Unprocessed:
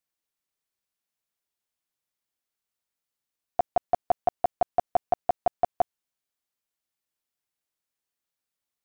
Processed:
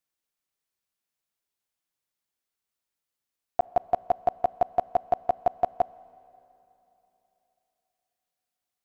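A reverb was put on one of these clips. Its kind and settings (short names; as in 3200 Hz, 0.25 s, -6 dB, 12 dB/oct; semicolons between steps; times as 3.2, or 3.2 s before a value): Schroeder reverb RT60 3.3 s, combs from 28 ms, DRR 20 dB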